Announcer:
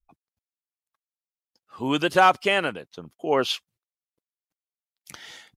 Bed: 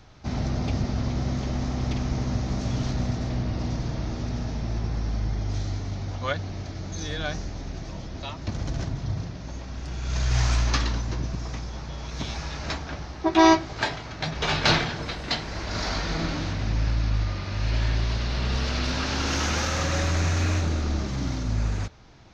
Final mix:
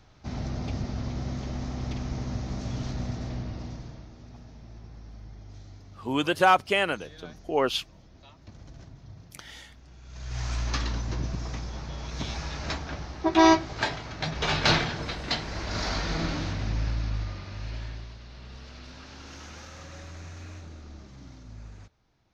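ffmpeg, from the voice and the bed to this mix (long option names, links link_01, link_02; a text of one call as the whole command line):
ffmpeg -i stem1.wav -i stem2.wav -filter_complex "[0:a]adelay=4250,volume=-2.5dB[link_01];[1:a]volume=10.5dB,afade=type=out:start_time=3.28:duration=0.81:silence=0.251189,afade=type=in:start_time=10.13:duration=1.06:silence=0.158489,afade=type=out:start_time=16.31:duration=1.84:silence=0.141254[link_02];[link_01][link_02]amix=inputs=2:normalize=0" out.wav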